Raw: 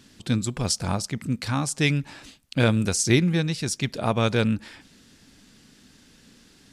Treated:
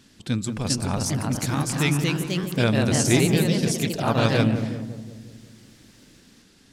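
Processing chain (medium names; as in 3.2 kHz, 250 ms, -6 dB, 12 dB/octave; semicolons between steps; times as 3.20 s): filtered feedback delay 180 ms, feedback 61%, low-pass 910 Hz, level -7 dB; ever faster or slower copies 432 ms, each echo +2 st, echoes 3; trim -1.5 dB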